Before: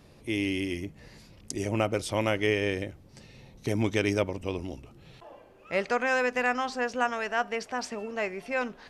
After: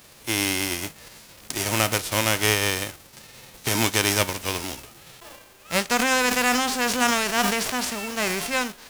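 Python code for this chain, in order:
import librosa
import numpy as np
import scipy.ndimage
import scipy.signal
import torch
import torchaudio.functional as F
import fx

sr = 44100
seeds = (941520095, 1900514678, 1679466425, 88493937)

y = fx.envelope_flatten(x, sr, power=0.3)
y = fx.sustainer(y, sr, db_per_s=29.0, at=(5.98, 8.53), fade=0.02)
y = F.gain(torch.from_numpy(y), 4.5).numpy()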